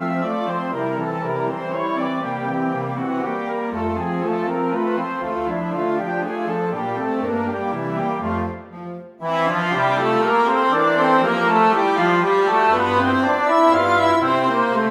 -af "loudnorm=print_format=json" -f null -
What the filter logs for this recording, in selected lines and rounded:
"input_i" : "-19.1",
"input_tp" : "-2.8",
"input_lra" : "6.8",
"input_thresh" : "-29.2",